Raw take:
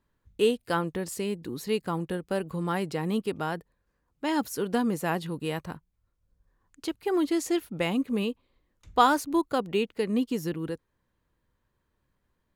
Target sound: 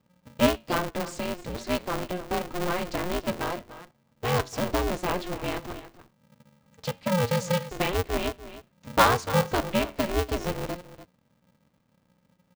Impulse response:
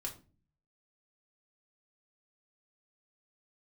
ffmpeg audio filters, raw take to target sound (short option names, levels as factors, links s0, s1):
-af "lowpass=f=7000:w=0.5412,lowpass=f=7000:w=1.3066,lowshelf=f=99:g=10.5,aecho=1:1:293:0.188,flanger=delay=8.6:depth=4.4:regen=81:speed=0.25:shape=triangular,asuperstop=centerf=1600:order=20:qfactor=5.3,equalizer=f=190:w=2.8:g=-7.5,aeval=exprs='val(0)*sgn(sin(2*PI*180*n/s))':c=same,volume=1.88"